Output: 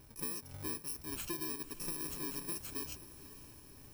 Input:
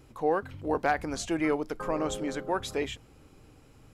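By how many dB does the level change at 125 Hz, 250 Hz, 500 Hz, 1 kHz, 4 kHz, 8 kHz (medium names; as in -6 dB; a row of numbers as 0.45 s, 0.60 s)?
-8.5 dB, -14.0 dB, -20.0 dB, -20.5 dB, -6.0 dB, +1.0 dB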